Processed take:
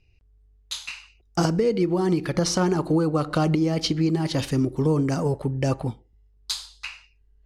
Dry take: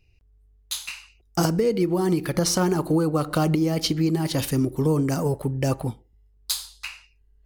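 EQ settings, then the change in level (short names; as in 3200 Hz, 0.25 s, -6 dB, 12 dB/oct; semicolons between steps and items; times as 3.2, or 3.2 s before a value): LPF 6500 Hz 12 dB/oct; 0.0 dB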